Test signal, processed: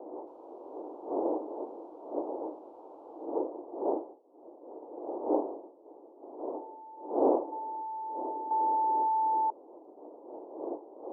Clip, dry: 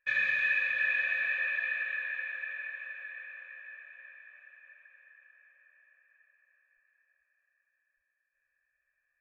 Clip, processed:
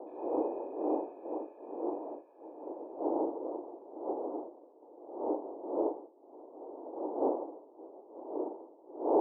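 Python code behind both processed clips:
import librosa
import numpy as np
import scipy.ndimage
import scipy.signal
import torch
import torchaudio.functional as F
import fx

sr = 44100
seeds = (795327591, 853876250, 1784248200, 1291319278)

y = fx.delta_hold(x, sr, step_db=-46.0)
y = fx.dmg_wind(y, sr, seeds[0], corner_hz=460.0, level_db=-28.0)
y = scipy.signal.sosfilt(scipy.signal.ellip(3, 1.0, 40, [310.0, 920.0], 'bandpass', fs=sr, output='sos'), y)
y = y * librosa.db_to_amplitude(-4.5)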